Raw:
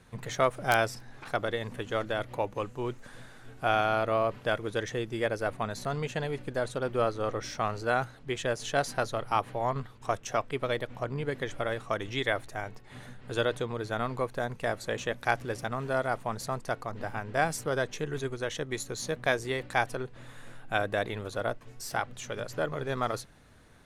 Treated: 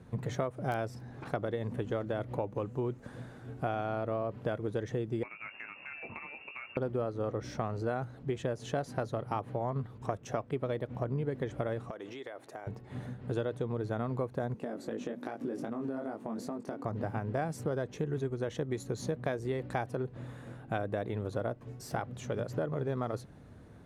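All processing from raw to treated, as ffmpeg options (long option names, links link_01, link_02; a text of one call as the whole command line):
ffmpeg -i in.wav -filter_complex "[0:a]asettb=1/sr,asplit=3[link_01][link_02][link_03];[link_01]atrim=end=5.234[link_04];[link_02]atrim=start=5.23:end=6.77,asetpts=PTS-STARTPTS,afade=type=in:duration=0.004:curve=qsin,afade=type=out:start_time=1.536:duration=0.004:curve=qsin,lowpass=frequency=2400:width_type=q:width=0.5098,lowpass=frequency=2400:width_type=q:width=0.6013,lowpass=frequency=2400:width_type=q:width=0.9,lowpass=frequency=2400:width_type=q:width=2.563,afreqshift=-2800,acompressor=threshold=-36dB:ratio=4:attack=3.2:release=140:knee=1:detection=peak,asplit=2[link_05][link_06];[link_06]adelay=21,volume=-9dB[link_07];[link_05][link_07]amix=inputs=2:normalize=0,atrim=end_sample=67914[link_08];[link_03]atrim=start=6.766[link_09];[link_04][link_08]acrossfade=duration=0.004:curve1=hsin:curve2=qsin[link_10];[link_10][link_09]acrossfade=duration=0.004:curve1=qsin:curve2=hsin,asettb=1/sr,asplit=3[link_11][link_12][link_13];[link_11]atrim=end=11.904[link_14];[link_12]atrim=start=11.9:end=12.67,asetpts=PTS-STARTPTS,afade=type=in:duration=0.004:curve=qsin,afade=type=out:start_time=0.766:duration=0.004:curve=qsin,highpass=380,acompressor=threshold=-40dB:ratio=8:attack=3.2:release=140:knee=1:detection=peak[link_15];[link_13]atrim=start=12.666[link_16];[link_14][link_15]acrossfade=duration=0.004:curve1=hsin:curve2=qsin[link_17];[link_17][link_16]acrossfade=duration=0.004:curve1=qsin:curve2=hsin,asettb=1/sr,asplit=3[link_18][link_19][link_20];[link_18]atrim=end=14.544[link_21];[link_19]atrim=start=14.54:end=16.85,asetpts=PTS-STARTPTS,afade=type=in:duration=0.004:curve=qsin,afade=type=out:start_time=2.306:duration=0.004:curve=qsin,flanger=delay=18.5:depth=3.6:speed=2.5,highpass=frequency=260:width_type=q:width=3.1,acompressor=threshold=-36dB:ratio=10:attack=3.2:release=140:knee=1:detection=peak[link_22];[link_20]atrim=start=16.846[link_23];[link_21][link_22]acrossfade=duration=0.004:curve1=hsin:curve2=qsin[link_24];[link_24][link_23]acrossfade=duration=0.004:curve1=qsin:curve2=hsin,highpass=66,tiltshelf=frequency=910:gain=8.5,acompressor=threshold=-30dB:ratio=6" out.wav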